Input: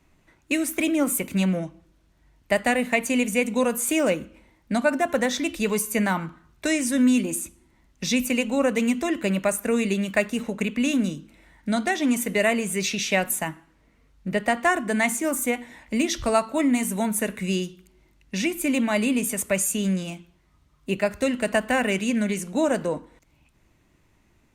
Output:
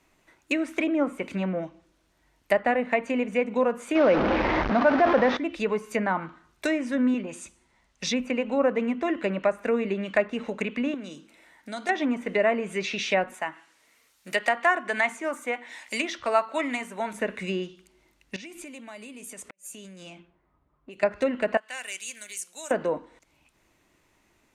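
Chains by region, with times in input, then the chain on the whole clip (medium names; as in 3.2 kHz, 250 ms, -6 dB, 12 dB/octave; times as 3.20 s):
3.95–5.37 s: one-bit delta coder 32 kbps, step -22.5 dBFS + level flattener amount 70%
7.14–8.07 s: low-pass 8.7 kHz + peaking EQ 310 Hz -13.5 dB 0.39 oct
10.94–11.89 s: high-pass 240 Hz 6 dB/octave + compression 2:1, threshold -35 dBFS
13.34–17.13 s: high-pass 46 Hz + tilt EQ +4 dB/octave
18.36–21.03 s: level-controlled noise filter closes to 1 kHz, open at -20.5 dBFS + compression 12:1, threshold -37 dBFS + inverted gate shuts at -28 dBFS, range -41 dB
21.57–22.71 s: high-pass 42 Hz + differentiator
whole clip: low-pass that closes with the level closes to 1.5 kHz, closed at -19.5 dBFS; tone controls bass -11 dB, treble +1 dB; trim +1 dB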